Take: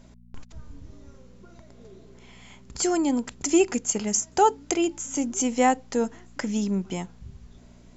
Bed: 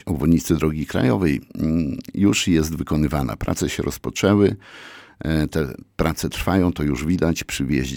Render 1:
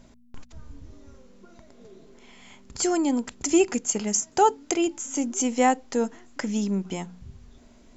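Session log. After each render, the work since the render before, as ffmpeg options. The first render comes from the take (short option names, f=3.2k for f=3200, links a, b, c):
-af "bandreject=f=60:t=h:w=4,bandreject=f=120:t=h:w=4,bandreject=f=180:t=h:w=4"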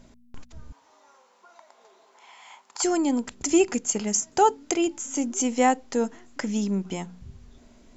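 -filter_complex "[0:a]asettb=1/sr,asplit=3[a][b][c];[a]atrim=end=0.724[d];[b]atrim=start=0.72:end=2.84,asetpts=PTS-STARTPTS,afade=t=in:d=0.004:c=qsin,afade=t=out:st=2.116:d=0.004:c=qsin,highpass=f=880:t=q:w=3.6[e];[c]atrim=start=2.836[f];[d][e]acrossfade=d=0.004:c1=hsin:c2=qsin[g];[g][f]acrossfade=d=0.004:c1=qsin:c2=hsin"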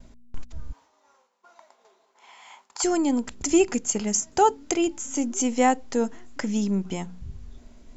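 -af "agate=range=-33dB:threshold=-51dB:ratio=3:detection=peak,lowshelf=f=76:g=11"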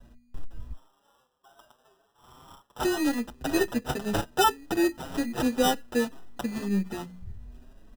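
-filter_complex "[0:a]acrossover=split=210[a][b];[b]acrusher=samples=20:mix=1:aa=0.000001[c];[a][c]amix=inputs=2:normalize=0,asplit=2[d][e];[e]adelay=6.7,afreqshift=1.9[f];[d][f]amix=inputs=2:normalize=1"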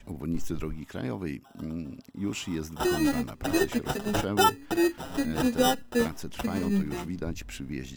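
-filter_complex "[1:a]volume=-15dB[a];[0:a][a]amix=inputs=2:normalize=0"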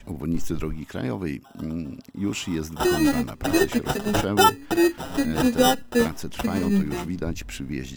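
-af "volume=5dB"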